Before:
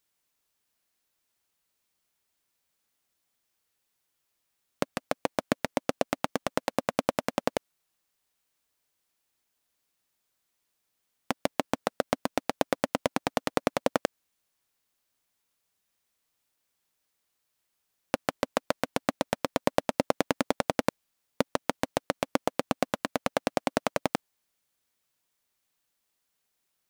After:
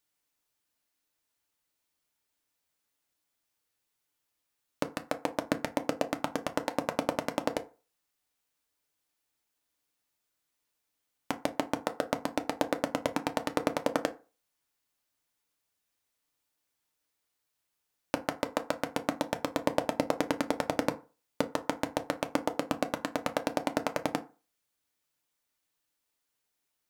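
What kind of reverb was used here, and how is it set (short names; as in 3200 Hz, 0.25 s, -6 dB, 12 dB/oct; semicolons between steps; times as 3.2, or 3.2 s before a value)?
FDN reverb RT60 0.34 s, low-frequency decay 0.9×, high-frequency decay 0.55×, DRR 6.5 dB; gain -3.5 dB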